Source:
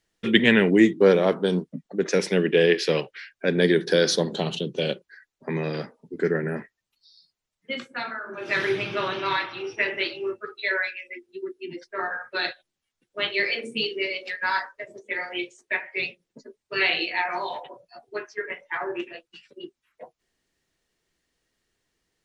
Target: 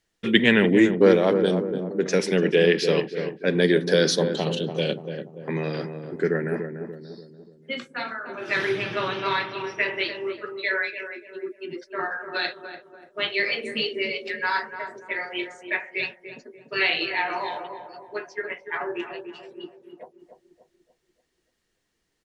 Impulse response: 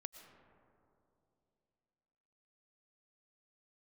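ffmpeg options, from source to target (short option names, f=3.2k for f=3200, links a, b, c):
-filter_complex "[0:a]asplit=2[a][b];[b]adelay=291,lowpass=f=930:p=1,volume=-6.5dB,asplit=2[c][d];[d]adelay=291,lowpass=f=930:p=1,volume=0.5,asplit=2[e][f];[f]adelay=291,lowpass=f=930:p=1,volume=0.5,asplit=2[g][h];[h]adelay=291,lowpass=f=930:p=1,volume=0.5,asplit=2[i][j];[j]adelay=291,lowpass=f=930:p=1,volume=0.5,asplit=2[k][l];[l]adelay=291,lowpass=f=930:p=1,volume=0.5[m];[a][c][e][g][i][k][m]amix=inputs=7:normalize=0"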